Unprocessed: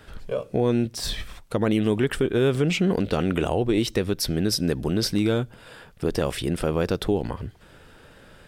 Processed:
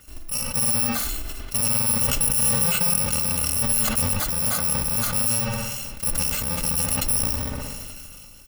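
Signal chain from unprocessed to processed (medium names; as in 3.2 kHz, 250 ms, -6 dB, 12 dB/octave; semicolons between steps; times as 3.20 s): bit-reversed sample order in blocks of 128 samples; comb 3.4 ms, depth 37%; feedback echo behind a low-pass 63 ms, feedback 69%, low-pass 3 kHz, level -11.5 dB; decay stretcher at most 21 dB/s; trim -1.5 dB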